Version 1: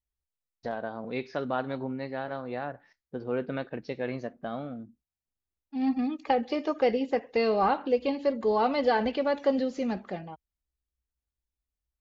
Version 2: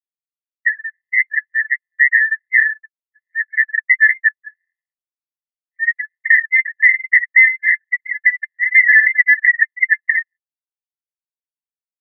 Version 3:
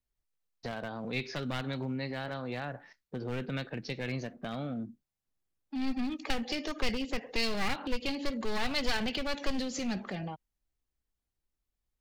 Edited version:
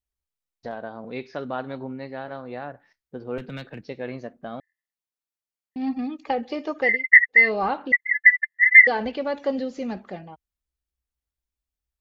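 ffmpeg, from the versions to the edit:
-filter_complex "[1:a]asplit=3[a][b][c];[0:a]asplit=5[d][e][f][g][h];[d]atrim=end=3.382[i];[2:a]atrim=start=3.378:end=3.812[j];[e]atrim=start=3.808:end=4.602[k];[a]atrim=start=4.598:end=5.762[l];[f]atrim=start=5.758:end=7.05[m];[b]atrim=start=6.81:end=7.52[n];[g]atrim=start=7.28:end=7.922[o];[c]atrim=start=7.918:end=8.872[p];[h]atrim=start=8.868[q];[i][j]acrossfade=d=0.004:c1=hsin:c2=hsin[r];[r][k]acrossfade=d=0.004:c1=hsin:c2=hsin[s];[s][l]acrossfade=d=0.004:c1=hsin:c2=hsin[t];[t][m]acrossfade=d=0.004:c1=hsin:c2=hsin[u];[u][n]acrossfade=d=0.24:c1=tri:c2=tri[v];[v][o]acrossfade=d=0.24:c1=tri:c2=tri[w];[w][p]acrossfade=d=0.004:c1=hsin:c2=hsin[x];[x][q]acrossfade=d=0.004:c1=hsin:c2=hsin"

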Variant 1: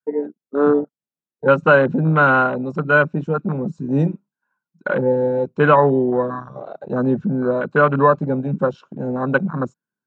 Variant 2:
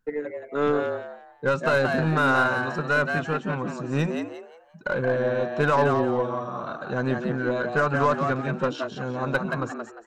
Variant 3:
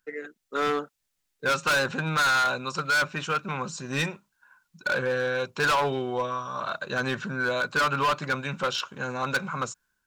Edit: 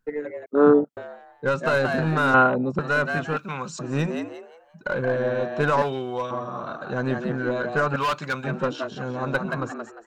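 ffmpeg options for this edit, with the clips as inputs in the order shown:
-filter_complex "[0:a]asplit=2[a][b];[2:a]asplit=3[c][d][e];[1:a]asplit=6[f][g][h][i][j][k];[f]atrim=end=0.462[l];[a]atrim=start=0.458:end=0.972[m];[g]atrim=start=0.968:end=2.342[n];[b]atrim=start=2.338:end=2.792[o];[h]atrim=start=2.788:end=3.372[p];[c]atrim=start=3.368:end=3.792[q];[i]atrim=start=3.788:end=5.822[r];[d]atrim=start=5.818:end=6.312[s];[j]atrim=start=6.308:end=7.962[t];[e]atrim=start=7.958:end=8.442[u];[k]atrim=start=8.438[v];[l][m]acrossfade=d=0.004:c1=hsin:c2=hsin[w];[w][n]acrossfade=d=0.004:c1=hsin:c2=hsin[x];[x][o]acrossfade=d=0.004:c1=hsin:c2=hsin[y];[y][p]acrossfade=d=0.004:c1=hsin:c2=hsin[z];[z][q]acrossfade=d=0.004:c1=hsin:c2=hsin[aa];[aa][r]acrossfade=d=0.004:c1=hsin:c2=hsin[ab];[ab][s]acrossfade=d=0.004:c1=hsin:c2=hsin[ac];[ac][t]acrossfade=d=0.004:c1=hsin:c2=hsin[ad];[ad][u]acrossfade=d=0.004:c1=hsin:c2=hsin[ae];[ae][v]acrossfade=d=0.004:c1=hsin:c2=hsin"

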